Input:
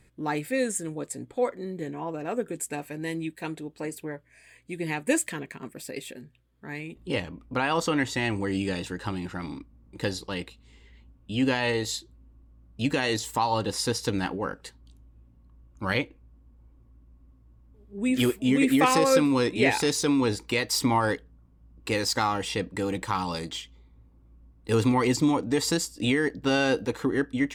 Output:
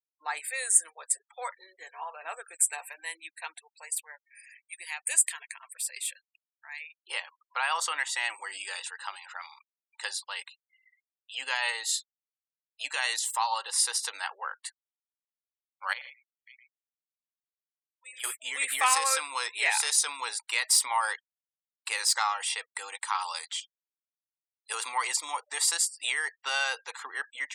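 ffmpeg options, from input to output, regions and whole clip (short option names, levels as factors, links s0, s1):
-filter_complex "[0:a]asettb=1/sr,asplit=3[s0][s1][s2];[s0]atrim=end=0.714[s3];[s1]atrim=start=0.71:end=3.01,asetpts=PTS-STARTPTS,afade=t=in:d=0.004:c=qsin,afade=t=out:st=2.296:d=0.004:c=qsin,acontrast=52,flanger=delay=3.1:depth=5.1:regen=80:speed=1.3:shape=sinusoidal[s4];[s2]atrim=start=3.006[s5];[s3][s4]acrossfade=d=0.004:c1=hsin:c2=qsin[s6];[s6][s5]acrossfade=d=0.004:c1=qsin:c2=hsin,asettb=1/sr,asplit=3[s7][s8][s9];[s7]atrim=end=3.674[s10];[s8]atrim=start=3.67:end=6.81,asetpts=PTS-STARTPTS,afade=t=in:d=0.004:c=qsin,afade=t=out:st=3.136:d=0.004:c=qsin,acompressor=threshold=0.00708:ratio=1.5:attack=3.2:release=140:knee=1:detection=peak,adynamicequalizer=threshold=0.00224:dfrequency=2100:dqfactor=0.7:tfrequency=2100:tqfactor=0.7:attack=5:release=100:ratio=0.375:range=3.5:mode=boostabove:tftype=highshelf[s11];[s9]atrim=start=6.806[s12];[s10][s11]acrossfade=d=0.004:c1=hsin:c2=qsin[s13];[s13][s12]acrossfade=d=0.004:c1=qsin:c2=hsin,asettb=1/sr,asplit=3[s14][s15][s16];[s14]atrim=end=15.934[s17];[s15]atrim=start=15.93:end=18.24,asetpts=PTS-STARTPTS,afade=t=in:d=0.004:c=qsin,afade=t=out:st=2.306:d=0.004:c=qsin,agate=range=0.2:threshold=0.00708:ratio=16:release=100:detection=peak,acompressor=threshold=0.00158:ratio=1.5:attack=3.2:release=140:knee=1:detection=peak,aecho=1:1:76|98|117|210|538|651:0.447|0.188|0.376|0.112|0.266|0.15,atrim=end_sample=101871[s18];[s16]atrim=start=18.236[s19];[s17][s18]acrossfade=d=0.004:c1=hsin:c2=qsin[s20];[s20][s19]acrossfade=d=0.004:c1=qsin:c2=hsin,asettb=1/sr,asplit=3[s21][s22][s23];[s21]atrim=end=23.604[s24];[s22]atrim=start=23.6:end=24.7,asetpts=PTS-STARTPTS,afade=t=in:d=0.004:c=qsin,afade=t=out:st=1.096:d=0.004:c=qsin,bandpass=f=3400:t=q:w=0.56,aderivative[s25];[s23]atrim=start=24.696[s26];[s24][s25]acrossfade=d=0.004:c1=hsin:c2=qsin[s27];[s27][s26]acrossfade=d=0.004:c1=qsin:c2=hsin,highpass=f=870:w=0.5412,highpass=f=870:w=1.3066,afftfilt=real='re*gte(hypot(re,im),0.00398)':imag='im*gte(hypot(re,im),0.00398)':win_size=1024:overlap=0.75,equalizer=f=9100:t=o:w=0.42:g=12.5"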